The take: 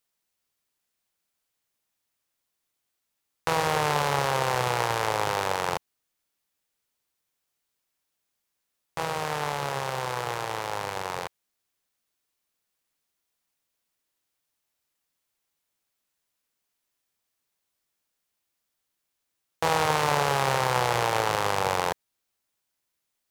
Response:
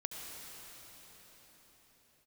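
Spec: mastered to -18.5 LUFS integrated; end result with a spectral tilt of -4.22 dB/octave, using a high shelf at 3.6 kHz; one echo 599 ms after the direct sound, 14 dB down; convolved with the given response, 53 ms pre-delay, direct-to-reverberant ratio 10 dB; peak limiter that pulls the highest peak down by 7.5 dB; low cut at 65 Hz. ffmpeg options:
-filter_complex "[0:a]highpass=65,highshelf=f=3600:g=-6,alimiter=limit=0.158:level=0:latency=1,aecho=1:1:599:0.2,asplit=2[s0][s1];[1:a]atrim=start_sample=2205,adelay=53[s2];[s1][s2]afir=irnorm=-1:irlink=0,volume=0.299[s3];[s0][s3]amix=inputs=2:normalize=0,volume=3.98"

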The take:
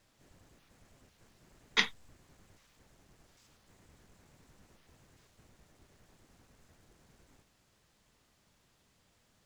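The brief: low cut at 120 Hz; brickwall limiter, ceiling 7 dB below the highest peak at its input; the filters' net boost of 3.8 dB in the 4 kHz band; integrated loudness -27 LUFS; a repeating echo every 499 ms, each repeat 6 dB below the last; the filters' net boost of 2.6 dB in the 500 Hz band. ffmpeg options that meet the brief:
-af "highpass=120,equalizer=f=500:t=o:g=3,equalizer=f=4000:t=o:g=4.5,alimiter=limit=0.282:level=0:latency=1,aecho=1:1:499|998|1497|1996|2495|2994:0.501|0.251|0.125|0.0626|0.0313|0.0157,volume=2.99"

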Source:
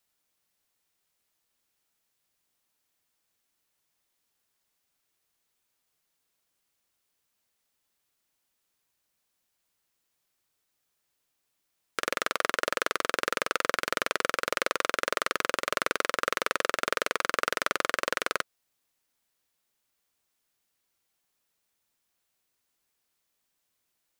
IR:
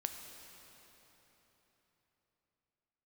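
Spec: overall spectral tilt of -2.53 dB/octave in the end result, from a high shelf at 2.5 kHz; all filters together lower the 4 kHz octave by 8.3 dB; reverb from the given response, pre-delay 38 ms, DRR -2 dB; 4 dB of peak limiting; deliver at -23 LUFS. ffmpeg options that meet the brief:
-filter_complex "[0:a]highshelf=f=2500:g=-8.5,equalizer=f=4000:t=o:g=-3.5,alimiter=limit=0.2:level=0:latency=1,asplit=2[s0][s1];[1:a]atrim=start_sample=2205,adelay=38[s2];[s1][s2]afir=irnorm=-1:irlink=0,volume=1.26[s3];[s0][s3]amix=inputs=2:normalize=0,volume=2.11"

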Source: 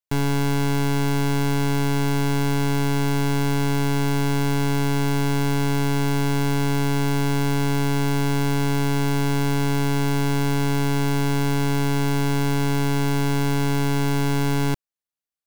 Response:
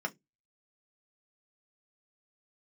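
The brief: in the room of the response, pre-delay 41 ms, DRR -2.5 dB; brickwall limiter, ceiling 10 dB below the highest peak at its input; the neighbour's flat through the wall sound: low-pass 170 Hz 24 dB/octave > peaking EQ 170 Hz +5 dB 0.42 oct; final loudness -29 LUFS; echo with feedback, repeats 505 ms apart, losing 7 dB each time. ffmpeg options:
-filter_complex "[0:a]alimiter=level_in=2.11:limit=0.0631:level=0:latency=1,volume=0.473,aecho=1:1:505|1010|1515|2020|2525:0.447|0.201|0.0905|0.0407|0.0183,asplit=2[s0][s1];[1:a]atrim=start_sample=2205,adelay=41[s2];[s1][s2]afir=irnorm=-1:irlink=0,volume=0.841[s3];[s0][s3]amix=inputs=2:normalize=0,lowpass=f=170:w=0.5412,lowpass=f=170:w=1.3066,equalizer=f=170:t=o:w=0.42:g=5,volume=1.12"

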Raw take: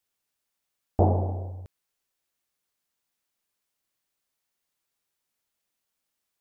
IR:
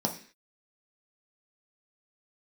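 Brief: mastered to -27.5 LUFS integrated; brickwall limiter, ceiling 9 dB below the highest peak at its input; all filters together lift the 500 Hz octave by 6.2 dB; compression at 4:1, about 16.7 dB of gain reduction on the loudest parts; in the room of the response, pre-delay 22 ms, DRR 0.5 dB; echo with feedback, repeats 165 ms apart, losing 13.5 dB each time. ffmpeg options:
-filter_complex "[0:a]equalizer=f=500:t=o:g=8,acompressor=threshold=0.0224:ratio=4,alimiter=level_in=1.5:limit=0.0631:level=0:latency=1,volume=0.668,aecho=1:1:165|330:0.211|0.0444,asplit=2[s0][s1];[1:a]atrim=start_sample=2205,adelay=22[s2];[s1][s2]afir=irnorm=-1:irlink=0,volume=0.422[s3];[s0][s3]amix=inputs=2:normalize=0,volume=3.16"

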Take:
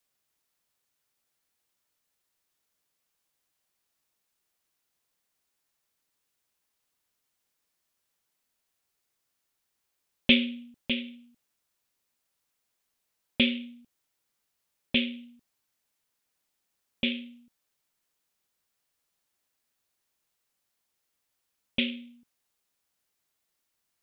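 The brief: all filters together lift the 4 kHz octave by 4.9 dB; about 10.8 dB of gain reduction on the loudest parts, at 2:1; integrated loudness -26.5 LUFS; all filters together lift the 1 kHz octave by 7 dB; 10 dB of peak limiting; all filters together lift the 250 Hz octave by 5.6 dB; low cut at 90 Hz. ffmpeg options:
-af "highpass=90,equalizer=f=250:t=o:g=5.5,equalizer=f=1000:t=o:g=9,equalizer=f=4000:t=o:g=6,acompressor=threshold=0.0282:ratio=2,volume=3.16,alimiter=limit=0.335:level=0:latency=1"

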